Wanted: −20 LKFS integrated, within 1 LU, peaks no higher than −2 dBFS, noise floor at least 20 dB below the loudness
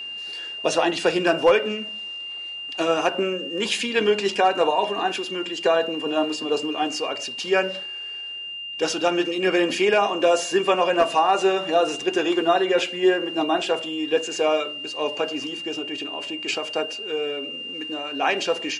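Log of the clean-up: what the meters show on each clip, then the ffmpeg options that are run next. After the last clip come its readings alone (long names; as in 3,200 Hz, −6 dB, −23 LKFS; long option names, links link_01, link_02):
interfering tone 2,800 Hz; level of the tone −31 dBFS; integrated loudness −23.0 LKFS; sample peak −7.5 dBFS; target loudness −20.0 LKFS
→ -af "bandreject=frequency=2800:width=30"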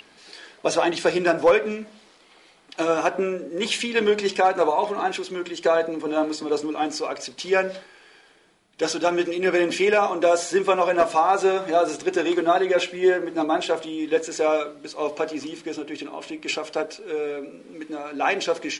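interfering tone none found; integrated loudness −23.0 LKFS; sample peak −8.0 dBFS; target loudness −20.0 LKFS
→ -af "volume=3dB"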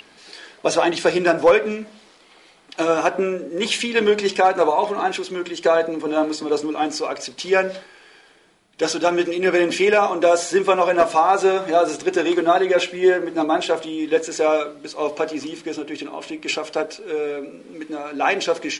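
integrated loudness −20.0 LKFS; sample peak −5.0 dBFS; background noise floor −51 dBFS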